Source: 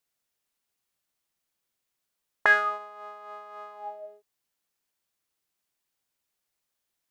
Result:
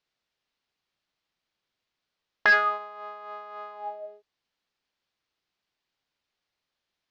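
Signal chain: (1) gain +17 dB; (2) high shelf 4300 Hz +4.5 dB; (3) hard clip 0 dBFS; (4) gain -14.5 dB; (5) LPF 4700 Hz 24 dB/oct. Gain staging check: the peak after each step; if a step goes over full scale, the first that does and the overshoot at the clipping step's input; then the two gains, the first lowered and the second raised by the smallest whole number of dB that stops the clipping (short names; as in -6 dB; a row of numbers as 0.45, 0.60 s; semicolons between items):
+8.5, +8.5, 0.0, -14.5, -13.0 dBFS; step 1, 8.5 dB; step 1 +8 dB, step 4 -5.5 dB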